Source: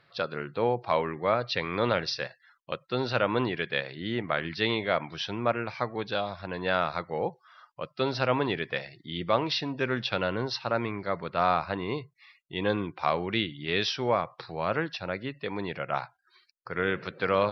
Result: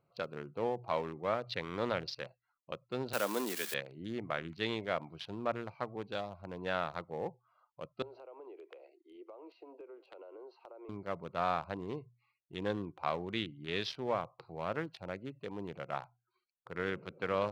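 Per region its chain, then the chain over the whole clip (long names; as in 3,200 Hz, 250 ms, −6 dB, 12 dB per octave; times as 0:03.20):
0:03.13–0:03.74: spike at every zero crossing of −19 dBFS + Butterworth high-pass 190 Hz 48 dB per octave
0:08.02–0:10.89: Butterworth high-pass 330 Hz 72 dB per octave + spectral tilt −2 dB per octave + downward compressor 12 to 1, threshold −37 dBFS
whole clip: adaptive Wiener filter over 25 samples; mains-hum notches 60/120 Hz; level −7.5 dB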